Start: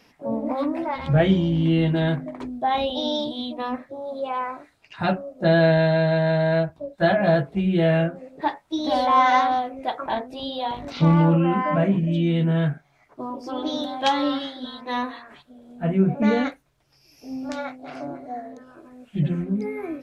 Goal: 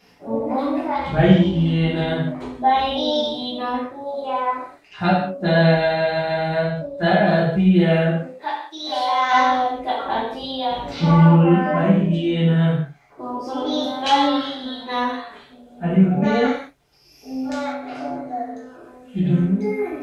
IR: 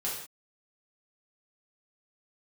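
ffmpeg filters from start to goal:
-filter_complex "[0:a]asplit=3[a][b][c];[a]afade=t=out:st=8.29:d=0.02[d];[b]highpass=f=1.3k:p=1,afade=t=in:st=8.29:d=0.02,afade=t=out:st=9.3:d=0.02[e];[c]afade=t=in:st=9.3:d=0.02[f];[d][e][f]amix=inputs=3:normalize=0[g];[1:a]atrim=start_sample=2205[h];[g][h]afir=irnorm=-1:irlink=0"

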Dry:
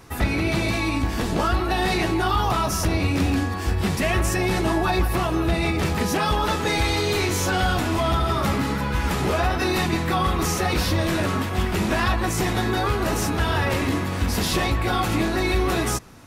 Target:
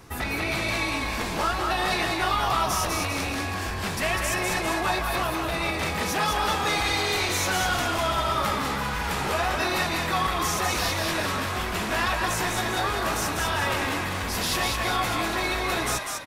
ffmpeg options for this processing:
-filter_complex "[0:a]acrossover=split=610[a][b];[a]asoftclip=type=hard:threshold=-30dB[c];[b]asplit=8[d][e][f][g][h][i][j][k];[e]adelay=199,afreqshift=-47,volume=-3.5dB[l];[f]adelay=398,afreqshift=-94,volume=-9.5dB[m];[g]adelay=597,afreqshift=-141,volume=-15.5dB[n];[h]adelay=796,afreqshift=-188,volume=-21.6dB[o];[i]adelay=995,afreqshift=-235,volume=-27.6dB[p];[j]adelay=1194,afreqshift=-282,volume=-33.6dB[q];[k]adelay=1393,afreqshift=-329,volume=-39.6dB[r];[d][l][m][n][o][p][q][r]amix=inputs=8:normalize=0[s];[c][s]amix=inputs=2:normalize=0,volume=-1.5dB"

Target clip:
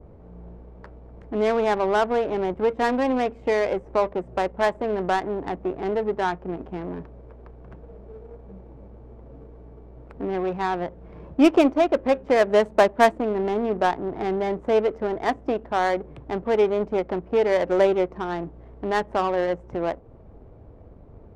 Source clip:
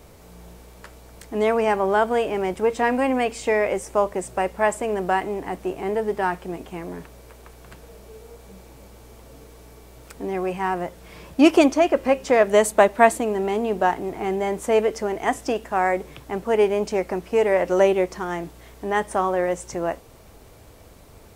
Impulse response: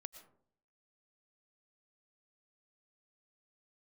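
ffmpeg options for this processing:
-filter_complex "[0:a]asplit=2[a][b];[b]acompressor=threshold=-30dB:ratio=6,volume=-1.5dB[c];[a][c]amix=inputs=2:normalize=0,adynamicequalizer=threshold=0.00891:dfrequency=4300:dqfactor=0.8:tfrequency=4300:tqfactor=0.8:attack=5:release=100:ratio=0.375:range=1.5:mode=cutabove:tftype=bell,adynamicsmooth=sensitivity=1:basefreq=620,volume=-2.5dB"

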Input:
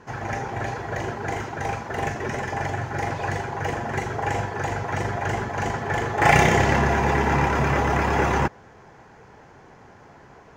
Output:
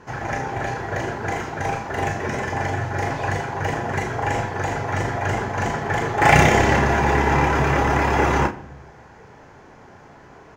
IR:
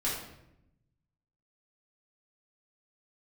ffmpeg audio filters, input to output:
-filter_complex "[0:a]asplit=2[a][b];[b]adelay=33,volume=-8dB[c];[a][c]amix=inputs=2:normalize=0,asplit=2[d][e];[1:a]atrim=start_sample=2205[f];[e][f]afir=irnorm=-1:irlink=0,volume=-18dB[g];[d][g]amix=inputs=2:normalize=0,volume=1dB"

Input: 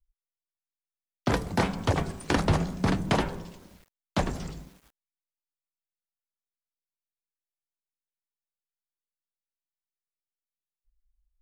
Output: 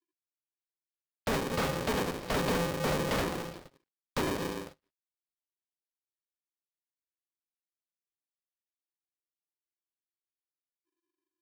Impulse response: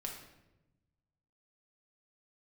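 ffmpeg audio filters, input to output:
-af "agate=range=-24dB:threshold=-49dB:ratio=16:detection=peak,bass=f=250:g=4,treble=f=4k:g=3,aresample=11025,asoftclip=type=tanh:threshold=-26.5dB,aresample=44100,aeval=exprs='val(0)*sgn(sin(2*PI*340*n/s))':c=same"

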